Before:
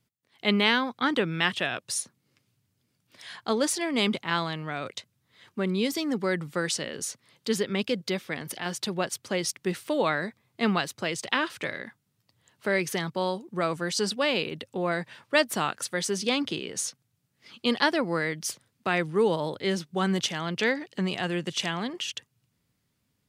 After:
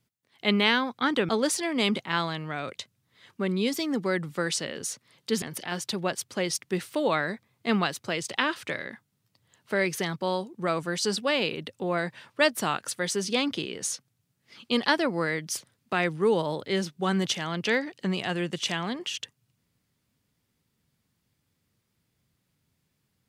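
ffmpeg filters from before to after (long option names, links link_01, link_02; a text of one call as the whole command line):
ffmpeg -i in.wav -filter_complex "[0:a]asplit=3[link_01][link_02][link_03];[link_01]atrim=end=1.292[link_04];[link_02]atrim=start=3.468:end=7.602[link_05];[link_03]atrim=start=8.358[link_06];[link_04][link_05]acrossfade=duration=0.004:curve1=hsin:curve2=hsin[link_07];[link_07][link_06]acrossfade=duration=0.004:curve1=hsin:curve2=hsin" out.wav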